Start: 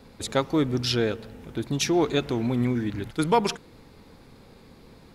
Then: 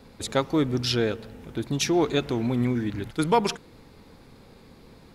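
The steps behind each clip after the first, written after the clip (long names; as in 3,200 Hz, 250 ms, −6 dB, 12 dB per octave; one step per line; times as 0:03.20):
no processing that can be heard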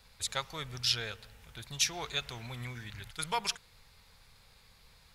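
guitar amp tone stack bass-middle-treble 10-0-10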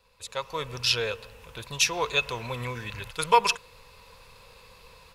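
automatic gain control gain up to 13.5 dB
hollow resonant body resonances 500/1,000/2,600 Hz, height 14 dB, ringing for 25 ms
level −7.5 dB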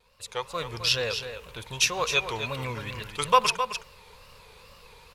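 tape wow and flutter 140 cents
single-tap delay 262 ms −9 dB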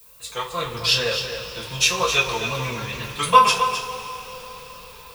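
coupled-rooms reverb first 0.23 s, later 4.5 s, from −22 dB, DRR −9.5 dB
background noise violet −46 dBFS
level −4 dB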